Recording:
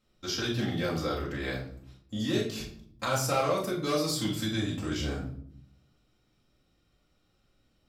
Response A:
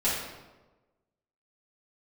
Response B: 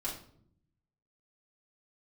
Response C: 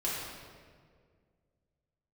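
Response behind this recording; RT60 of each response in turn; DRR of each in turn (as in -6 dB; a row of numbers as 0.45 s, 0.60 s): B; 1.2 s, 0.65 s, 1.9 s; -10.0 dB, -6.0 dB, -7.5 dB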